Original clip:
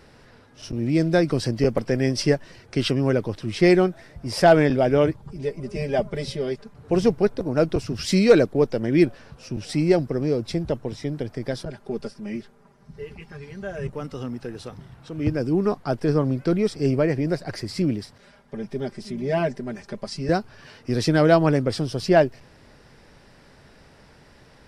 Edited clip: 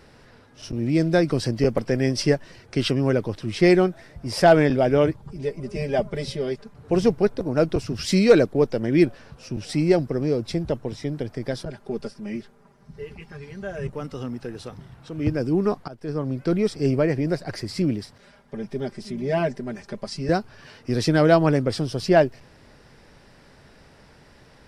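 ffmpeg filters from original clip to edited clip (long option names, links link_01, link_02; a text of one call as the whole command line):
ffmpeg -i in.wav -filter_complex "[0:a]asplit=2[link_01][link_02];[link_01]atrim=end=15.88,asetpts=PTS-STARTPTS,afade=type=out:start_time=15.876:duration=0.004:curve=hsin:silence=0.0944061[link_03];[link_02]atrim=start=15.88,asetpts=PTS-STARTPTS,afade=type=in:duration=0.69:silence=0.0944061[link_04];[link_03][link_04]concat=n=2:v=0:a=1" out.wav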